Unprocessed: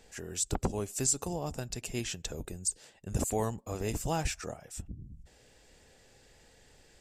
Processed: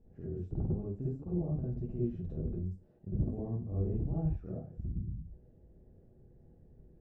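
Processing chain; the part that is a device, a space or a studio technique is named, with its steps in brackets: television next door (compressor 5:1, threshold -33 dBFS, peak gain reduction 9 dB; LPF 260 Hz 12 dB/oct; reverb RT60 0.30 s, pre-delay 48 ms, DRR -6.5 dB)

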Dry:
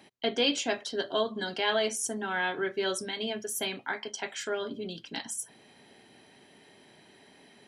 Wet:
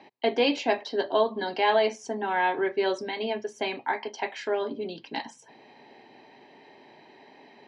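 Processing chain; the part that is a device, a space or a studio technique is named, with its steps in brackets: kitchen radio (speaker cabinet 180–4200 Hz, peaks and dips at 190 Hz -7 dB, 880 Hz +7 dB, 1400 Hz -10 dB, 3300 Hz -10 dB); gain +5.5 dB

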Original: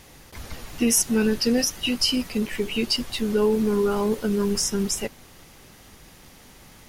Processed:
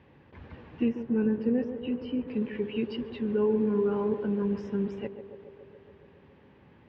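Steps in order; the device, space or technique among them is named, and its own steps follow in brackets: 0.88–2.28 LPF 1200 Hz 6 dB/oct; bass cabinet (speaker cabinet 70–2300 Hz, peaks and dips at 700 Hz -8 dB, 1300 Hz -9 dB, 2100 Hz -7 dB); narrowing echo 0.14 s, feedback 77%, band-pass 490 Hz, level -8 dB; gain -4.5 dB

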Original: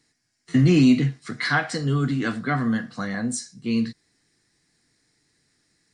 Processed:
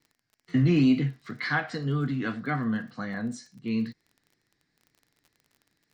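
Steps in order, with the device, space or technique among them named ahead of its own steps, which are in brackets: lo-fi chain (LPF 3900 Hz 12 dB/oct; wow and flutter; crackle 32/s -40 dBFS); gain -5 dB

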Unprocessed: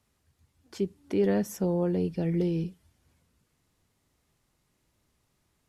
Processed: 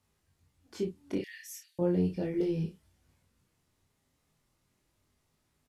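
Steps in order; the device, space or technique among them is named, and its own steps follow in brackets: 1.18–1.79 Chebyshev high-pass 1800 Hz, order 6; double-tracked vocal (doubler 32 ms -7 dB; chorus 0.37 Hz, delay 19.5 ms, depth 5.1 ms)

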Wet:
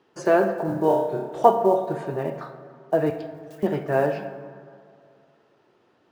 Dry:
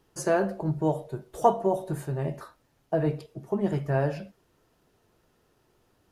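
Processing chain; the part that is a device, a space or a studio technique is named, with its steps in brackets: early digital voice recorder (BPF 220–3500 Hz; block floating point 7-bit); 0.66–1.43 flutter echo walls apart 5.1 m, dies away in 0.56 s; 3.1–3.63 elliptic high-pass 1500 Hz; plate-style reverb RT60 2.3 s, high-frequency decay 0.45×, DRR 9 dB; gain +5.5 dB

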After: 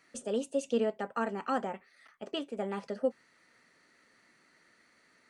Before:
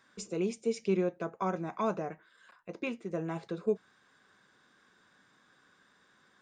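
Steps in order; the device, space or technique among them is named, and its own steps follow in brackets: nightcore (varispeed +21%)

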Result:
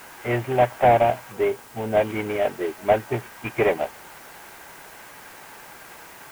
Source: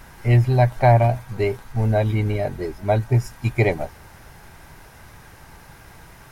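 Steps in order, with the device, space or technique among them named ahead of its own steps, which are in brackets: army field radio (BPF 350–3300 Hz; CVSD 16 kbps; white noise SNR 24 dB); 1.32–1.97 bell 1700 Hz -4.5 dB 2.4 oct; gain +4 dB

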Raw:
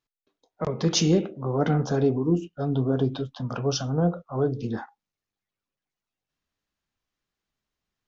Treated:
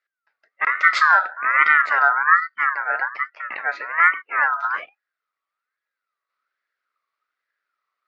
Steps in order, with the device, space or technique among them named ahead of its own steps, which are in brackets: 2.69–4 three-band isolator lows -15 dB, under 270 Hz, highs -21 dB, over 2700 Hz; voice changer toy (ring modulator with a swept carrier 1400 Hz, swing 20%, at 1.2 Hz; speaker cabinet 470–4700 Hz, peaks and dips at 570 Hz +3 dB, 850 Hz -6 dB, 1300 Hz +10 dB, 2000 Hz +9 dB, 3100 Hz -5 dB); gain +3.5 dB

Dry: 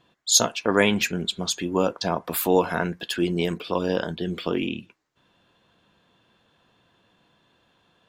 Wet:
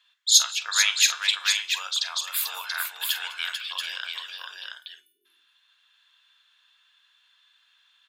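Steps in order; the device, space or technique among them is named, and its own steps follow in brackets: spectral delete 4.33–5.25, 440–8800 Hz; headphones lying on a table (HPF 1400 Hz 24 dB/oct; bell 3700 Hz +5.5 dB 0.51 oct); tapped delay 43/203/442/683/732 ms -12.5/-18/-6/-5/-15.5 dB; de-hum 294 Hz, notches 31

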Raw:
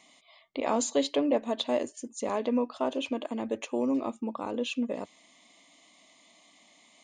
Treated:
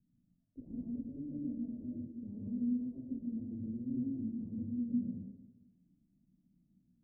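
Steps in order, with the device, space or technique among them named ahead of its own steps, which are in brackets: club heard from the street (limiter -21.5 dBFS, peak gain reduction 6.5 dB; LPF 150 Hz 24 dB/oct; reverb RT60 1.1 s, pre-delay 0.102 s, DRR -4.5 dB); gain +7.5 dB

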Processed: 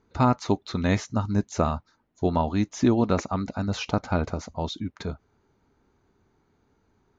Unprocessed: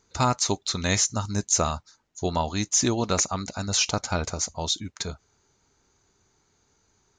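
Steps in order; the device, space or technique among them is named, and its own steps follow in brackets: phone in a pocket (LPF 3800 Hz 12 dB/oct; bell 250 Hz +5 dB 0.77 oct; high shelf 2300 Hz -11.5 dB); gain +2 dB

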